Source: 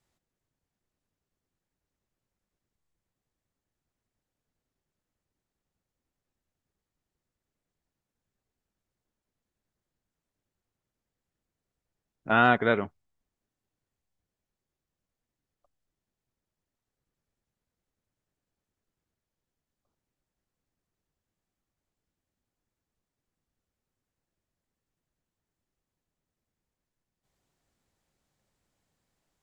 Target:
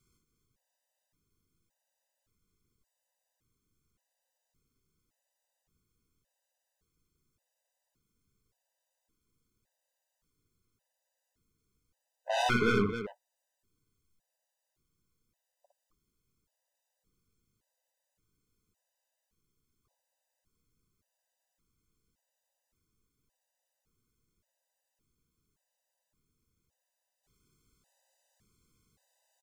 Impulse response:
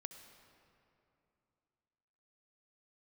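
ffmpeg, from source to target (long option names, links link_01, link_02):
-af "bass=frequency=250:gain=3,treble=frequency=4000:gain=6,asoftclip=type=tanh:threshold=-25dB,aecho=1:1:59|270:0.631|0.355,afftfilt=real='re*gt(sin(2*PI*0.88*pts/sr)*(1-2*mod(floor(b*sr/1024/510),2)),0)':imag='im*gt(sin(2*PI*0.88*pts/sr)*(1-2*mod(floor(b*sr/1024/510),2)),0)':win_size=1024:overlap=0.75,volume=3.5dB"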